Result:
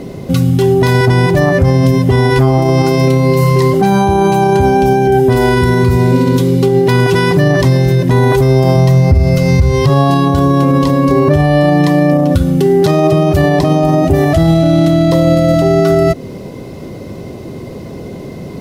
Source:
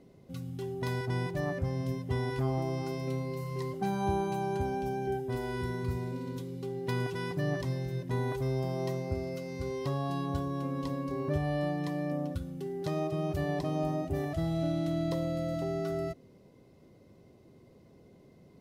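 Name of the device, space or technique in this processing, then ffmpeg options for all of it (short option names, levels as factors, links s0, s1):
loud club master: -filter_complex "[0:a]asplit=3[s0][s1][s2];[s0]afade=t=out:st=8.75:d=0.02[s3];[s1]asubboost=boost=10.5:cutoff=91,afade=t=in:st=8.75:d=0.02,afade=t=out:st=9.88:d=0.02[s4];[s2]afade=t=in:st=9.88:d=0.02[s5];[s3][s4][s5]amix=inputs=3:normalize=0,acompressor=threshold=0.00891:ratio=1.5,asoftclip=type=hard:threshold=0.0668,alimiter=level_in=39.8:limit=0.891:release=50:level=0:latency=1,volume=0.891"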